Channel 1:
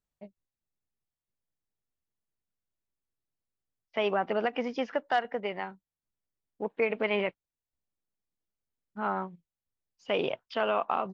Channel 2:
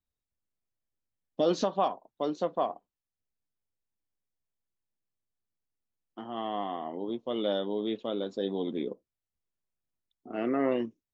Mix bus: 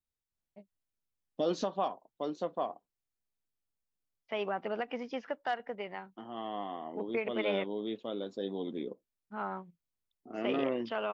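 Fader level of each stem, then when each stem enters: -6.5, -5.0 dB; 0.35, 0.00 s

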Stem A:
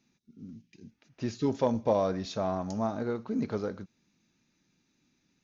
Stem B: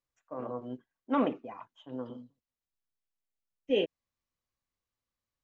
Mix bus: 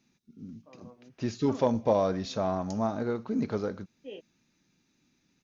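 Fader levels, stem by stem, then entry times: +1.5, -15.5 dB; 0.00, 0.35 s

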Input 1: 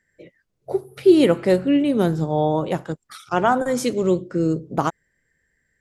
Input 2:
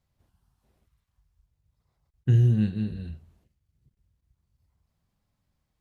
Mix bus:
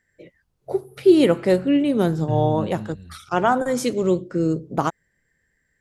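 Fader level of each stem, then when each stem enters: -0.5, -6.0 dB; 0.00, 0.00 s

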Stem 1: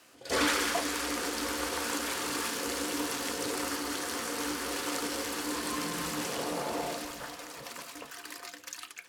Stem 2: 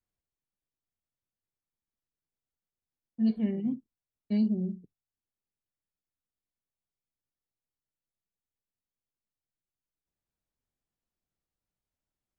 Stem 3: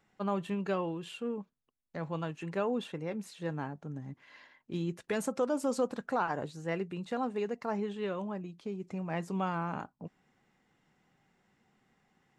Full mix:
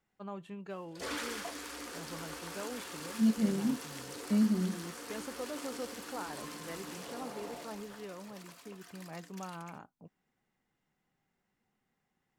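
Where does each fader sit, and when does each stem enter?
-11.0, -1.0, -10.5 dB; 0.70, 0.00, 0.00 s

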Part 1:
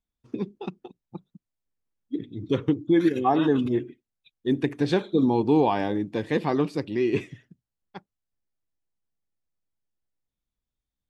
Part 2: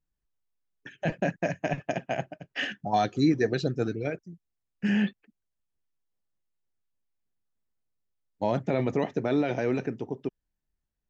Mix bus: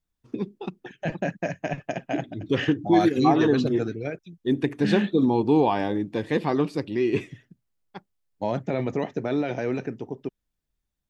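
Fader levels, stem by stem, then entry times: +0.5, 0.0 dB; 0.00, 0.00 s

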